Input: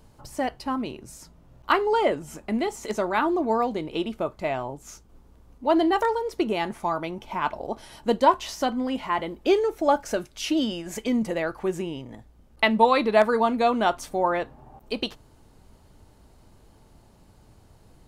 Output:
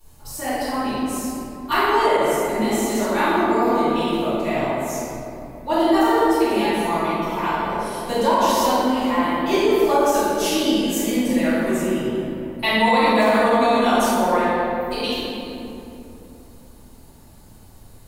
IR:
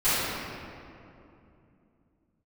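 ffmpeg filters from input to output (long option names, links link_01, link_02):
-filter_complex "[0:a]aemphasis=mode=production:type=75fm[link_01];[1:a]atrim=start_sample=2205,asetrate=38808,aresample=44100[link_02];[link_01][link_02]afir=irnorm=-1:irlink=0,alimiter=level_in=-5.5dB:limit=-1dB:release=50:level=0:latency=1,volume=-6.5dB"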